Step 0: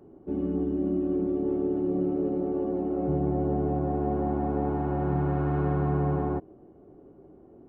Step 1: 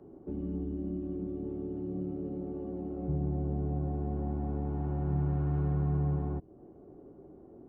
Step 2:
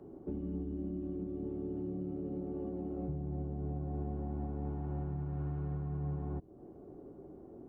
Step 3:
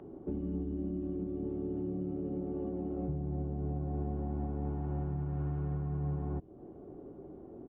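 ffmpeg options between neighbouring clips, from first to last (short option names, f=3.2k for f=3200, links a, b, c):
-filter_complex "[0:a]highshelf=f=2.4k:g=-11,acrossover=split=180|3000[a][b][c];[b]acompressor=threshold=-41dB:ratio=4[d];[a][d][c]amix=inputs=3:normalize=0"
-af "alimiter=level_in=7dB:limit=-24dB:level=0:latency=1:release=439,volume=-7dB,volume=1dB"
-af "acompressor=mode=upward:threshold=-59dB:ratio=2.5,aresample=8000,aresample=44100,volume=2.5dB"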